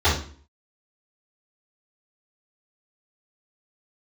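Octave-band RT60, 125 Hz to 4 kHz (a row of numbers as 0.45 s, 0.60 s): 0.50 s, 0.55 s, 0.45 s, 0.45 s, 0.40 s, 0.40 s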